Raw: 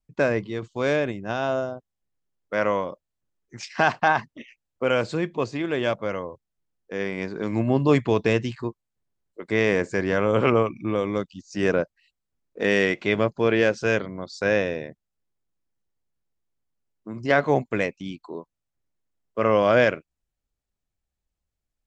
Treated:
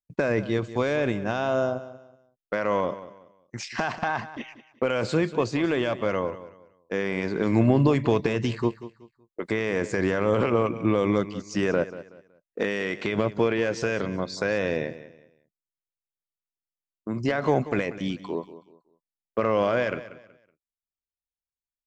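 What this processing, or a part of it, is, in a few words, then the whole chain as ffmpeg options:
de-esser from a sidechain: -filter_complex "[0:a]asplit=2[s0][s1];[s1]highpass=f=4800:p=1,apad=whole_len=964195[s2];[s0][s2]sidechaincompress=threshold=0.0112:ratio=8:attack=2.7:release=60,agate=range=0.0447:threshold=0.00355:ratio=16:detection=peak,aecho=1:1:187|374|561:0.178|0.0516|0.015,volume=1.78"

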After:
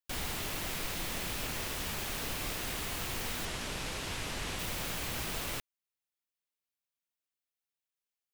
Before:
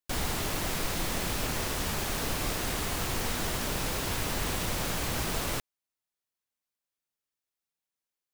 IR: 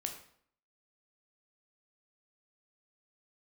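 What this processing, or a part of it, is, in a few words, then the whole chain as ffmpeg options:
presence and air boost: -filter_complex "[0:a]equalizer=f=2700:t=o:w=1.4:g=5,highshelf=f=10000:g=5.5,asettb=1/sr,asplit=3[s0][s1][s2];[s0]atrim=end=3.454[s3];[s1]atrim=start=3.45:end=4.59,asetpts=PTS-STARTPTS,afade=t=in:d=0.004:c=qsin,afade=t=out:st=1.136:d=0.004:c=qsin,lowpass=9200[s4];[s2]atrim=start=4.586[s5];[s3][s4]acrossfade=d=0.004:c1=hsin:c2=qsin[s6];[s6][s5]acrossfade=d=0.004:c1=qsin:c2=hsin,volume=0.422"

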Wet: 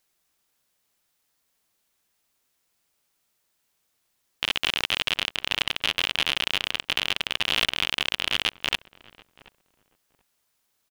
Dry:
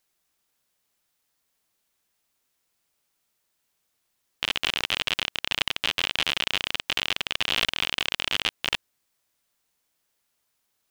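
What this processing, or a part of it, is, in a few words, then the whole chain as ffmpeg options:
parallel distortion: -filter_complex "[0:a]asplit=2[s0][s1];[s1]adelay=731,lowpass=f=970:p=1,volume=0.106,asplit=2[s2][s3];[s3]adelay=731,lowpass=f=970:p=1,volume=0.22[s4];[s0][s2][s4]amix=inputs=3:normalize=0,asplit=2[s5][s6];[s6]asoftclip=type=hard:threshold=0.158,volume=0.398[s7];[s5][s7]amix=inputs=2:normalize=0,volume=0.891"

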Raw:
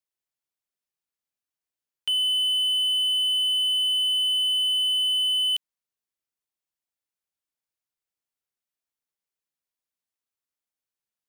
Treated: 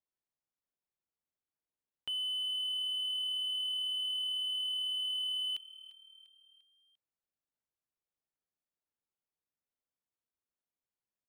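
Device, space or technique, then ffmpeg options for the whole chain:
through cloth: -filter_complex "[0:a]highshelf=f=2000:g=-17.5,asplit=5[s0][s1][s2][s3][s4];[s1]adelay=347,afreqshift=38,volume=0.126[s5];[s2]adelay=694,afreqshift=76,volume=0.0631[s6];[s3]adelay=1041,afreqshift=114,volume=0.0316[s7];[s4]adelay=1388,afreqshift=152,volume=0.0157[s8];[s0][s5][s6][s7][s8]amix=inputs=5:normalize=0"

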